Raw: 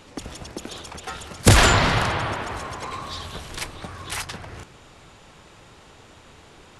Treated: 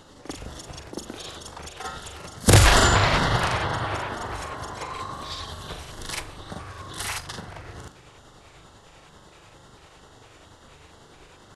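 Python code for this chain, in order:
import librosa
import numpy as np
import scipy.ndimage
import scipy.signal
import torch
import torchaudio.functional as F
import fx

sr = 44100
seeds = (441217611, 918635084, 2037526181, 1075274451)

y = fx.stretch_grains(x, sr, factor=1.7, grain_ms=197.0)
y = fx.filter_lfo_notch(y, sr, shape='square', hz=2.2, low_hz=220.0, high_hz=2400.0, q=2.5)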